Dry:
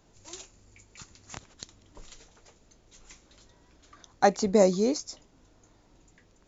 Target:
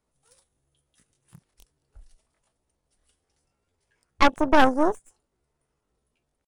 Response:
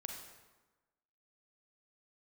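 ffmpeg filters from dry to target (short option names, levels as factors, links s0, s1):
-af "aeval=exprs='0.447*(cos(1*acos(clip(val(0)/0.447,-1,1)))-cos(1*PI/2))+0.158*(cos(6*acos(clip(val(0)/0.447,-1,1)))-cos(6*PI/2))':c=same,asetrate=62367,aresample=44100,atempo=0.707107,afwtdn=0.0224"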